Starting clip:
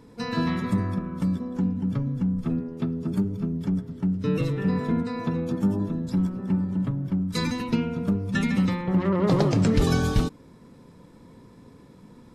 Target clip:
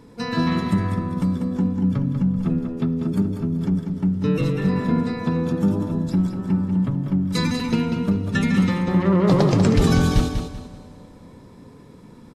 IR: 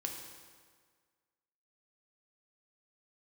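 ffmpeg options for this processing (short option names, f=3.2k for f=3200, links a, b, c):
-filter_complex "[0:a]aecho=1:1:193|386|579|772:0.447|0.13|0.0376|0.0109,asplit=2[a][b];[1:a]atrim=start_sample=2205,asetrate=23373,aresample=44100[c];[b][c]afir=irnorm=-1:irlink=0,volume=-16.5dB[d];[a][d]amix=inputs=2:normalize=0,volume=2dB"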